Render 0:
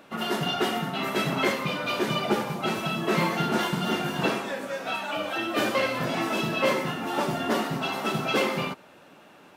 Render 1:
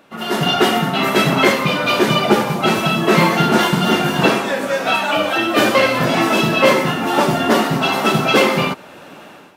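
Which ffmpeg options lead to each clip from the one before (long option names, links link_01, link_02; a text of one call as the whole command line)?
ffmpeg -i in.wav -af "dynaudnorm=framelen=130:gausssize=5:maxgain=13dB,volume=1dB" out.wav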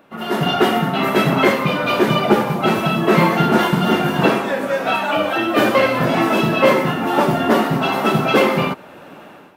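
ffmpeg -i in.wav -af "equalizer=frequency=6300:width_type=o:width=2.2:gain=-8.5" out.wav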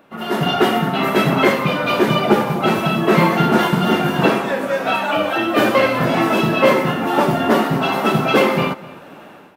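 ffmpeg -i in.wav -filter_complex "[0:a]asplit=2[link_01][link_02];[link_02]adelay=250.7,volume=-19dB,highshelf=frequency=4000:gain=-5.64[link_03];[link_01][link_03]amix=inputs=2:normalize=0" out.wav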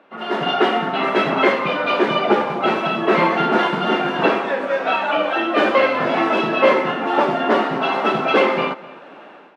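ffmpeg -i in.wav -af "highpass=310,lowpass=3600" out.wav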